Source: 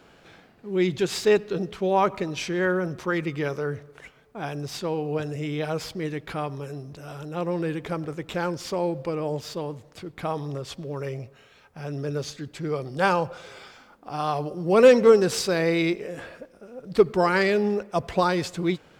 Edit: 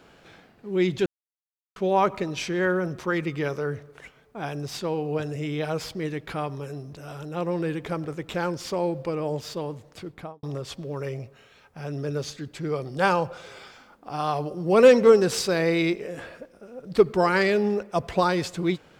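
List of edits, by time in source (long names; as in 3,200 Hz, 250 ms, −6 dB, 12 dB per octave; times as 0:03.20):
0:01.06–0:01.76: silence
0:10.06–0:10.43: fade out and dull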